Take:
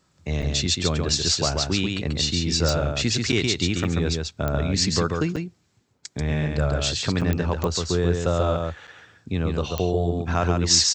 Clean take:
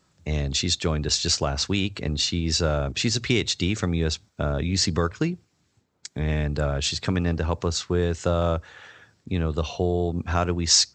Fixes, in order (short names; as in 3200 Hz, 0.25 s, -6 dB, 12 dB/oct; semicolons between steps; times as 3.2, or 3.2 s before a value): de-click; interpolate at 0.42/3.32/3.84/5.36/7.21/8.87, 6.3 ms; inverse comb 0.138 s -4 dB